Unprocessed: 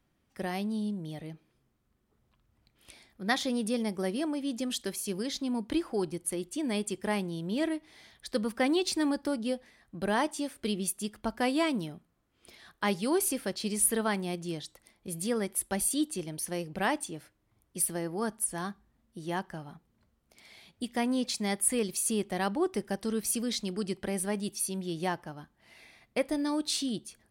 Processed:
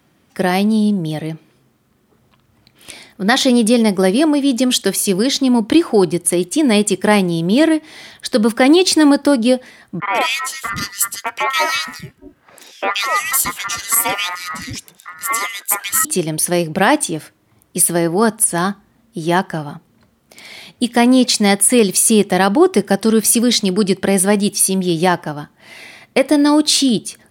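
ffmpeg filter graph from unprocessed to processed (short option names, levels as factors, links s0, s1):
-filter_complex "[0:a]asettb=1/sr,asplit=3[s0][s1][s2];[s0]atrim=end=10.004[s3];[s1]atrim=start=10:end=16.05,asetpts=PTS-STARTPTS,afade=t=in:d=0.004:c=qsin,afade=t=out:st=6.046:d=0.004:c=qsin,equalizer=f=150:t=o:w=1.6:g=-14,aeval=exprs='val(0)*sin(2*PI*1600*n/s)':c=same,acrossover=split=270|2200[s4][s5][s6];[s6]adelay=130[s7];[s4]adelay=620[s8];[s8][s5][s7]amix=inputs=3:normalize=0,atrim=end_sample=266805[s9];[s2]atrim=start=16.046[s10];[s3][s9]acrossfade=d=0.004:c1=hsin:c2=qsin[s11];[s11][s10]acrossfade=d=0.004:c1=qsin:c2=hsin,highpass=110,alimiter=level_in=9.44:limit=0.891:release=50:level=0:latency=1,volume=0.891"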